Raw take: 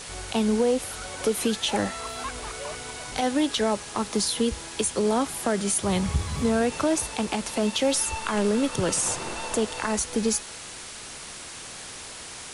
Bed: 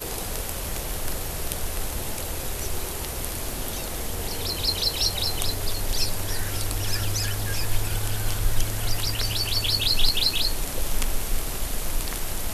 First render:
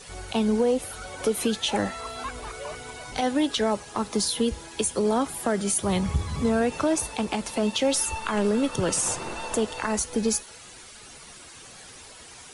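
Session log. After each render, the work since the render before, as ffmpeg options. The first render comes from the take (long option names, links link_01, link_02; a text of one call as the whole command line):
ffmpeg -i in.wav -af "afftdn=noise_reduction=10:noise_floor=-40" out.wav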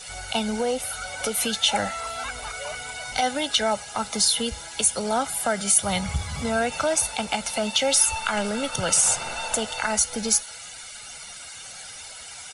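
ffmpeg -i in.wav -af "tiltshelf=frequency=740:gain=-5.5,aecho=1:1:1.4:0.61" out.wav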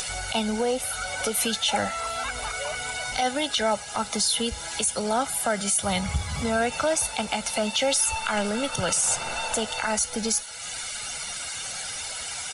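ffmpeg -i in.wav -af "acompressor=mode=upward:threshold=-25dB:ratio=2.5,alimiter=limit=-14dB:level=0:latency=1:release=15" out.wav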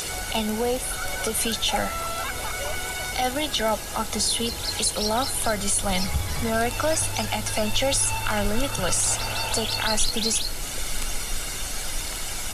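ffmpeg -i in.wav -i bed.wav -filter_complex "[1:a]volume=-5dB[link_01];[0:a][link_01]amix=inputs=2:normalize=0" out.wav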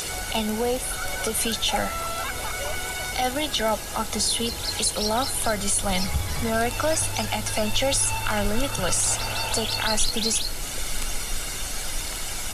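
ffmpeg -i in.wav -af anull out.wav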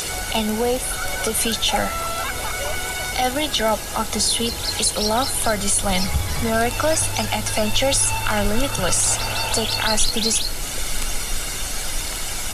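ffmpeg -i in.wav -af "volume=4dB" out.wav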